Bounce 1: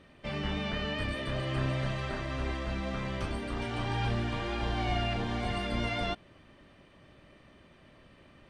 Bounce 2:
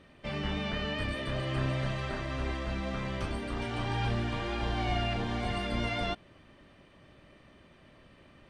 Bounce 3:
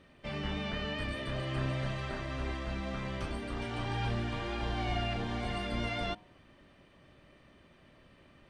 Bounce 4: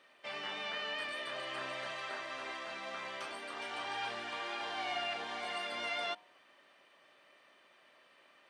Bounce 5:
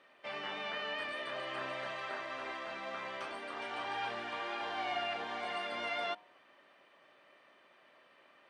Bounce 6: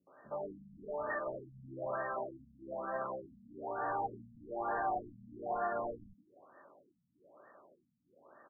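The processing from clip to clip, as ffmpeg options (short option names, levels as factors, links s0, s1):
-af anull
-af "bandreject=f=103.6:t=h:w=4,bandreject=f=207.2:t=h:w=4,bandreject=f=310.8:t=h:w=4,bandreject=f=414.4:t=h:w=4,bandreject=f=518:t=h:w=4,bandreject=f=621.6:t=h:w=4,bandreject=f=725.2:t=h:w=4,bandreject=f=828.8:t=h:w=4,bandreject=f=932.4:t=h:w=4,bandreject=f=1036:t=h:w=4,bandreject=f=1139.6:t=h:w=4,bandreject=f=1243.2:t=h:w=4,volume=0.75"
-af "highpass=680,volume=1.12"
-af "highshelf=f=3700:g=-11,volume=1.33"
-filter_complex "[0:a]asoftclip=type=hard:threshold=0.0211,acrossover=split=230|1300[s0][s1][s2];[s1]adelay=70[s3];[s2]adelay=110[s4];[s0][s3][s4]amix=inputs=3:normalize=0,afftfilt=real='re*lt(b*sr/1024,240*pow(1900/240,0.5+0.5*sin(2*PI*1.1*pts/sr)))':imag='im*lt(b*sr/1024,240*pow(1900/240,0.5+0.5*sin(2*PI*1.1*pts/sr)))':win_size=1024:overlap=0.75,volume=2.24"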